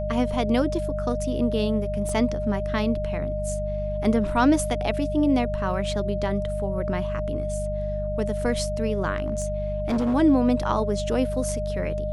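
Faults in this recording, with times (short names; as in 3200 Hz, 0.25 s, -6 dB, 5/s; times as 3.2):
hum 50 Hz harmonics 4 -30 dBFS
tone 610 Hz -28 dBFS
2.09 gap 2.1 ms
9.16–10.15 clipped -20 dBFS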